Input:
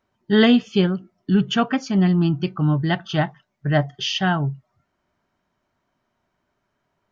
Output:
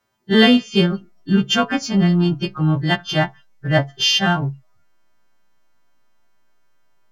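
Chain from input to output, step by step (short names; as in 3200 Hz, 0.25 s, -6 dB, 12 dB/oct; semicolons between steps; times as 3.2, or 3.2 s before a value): frequency quantiser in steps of 2 st; in parallel at -9 dB: backlash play -19 dBFS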